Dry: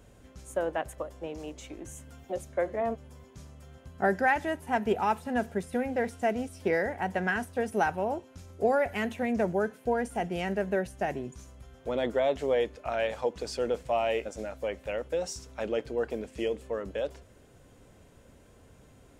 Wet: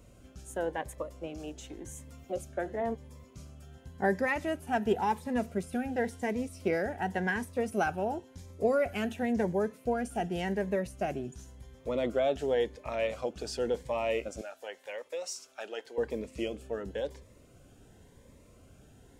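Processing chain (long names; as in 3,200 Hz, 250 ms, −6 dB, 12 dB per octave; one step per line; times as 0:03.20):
0:14.41–0:15.98: high-pass filter 680 Hz 12 dB per octave
phaser whose notches keep moving one way rising 0.92 Hz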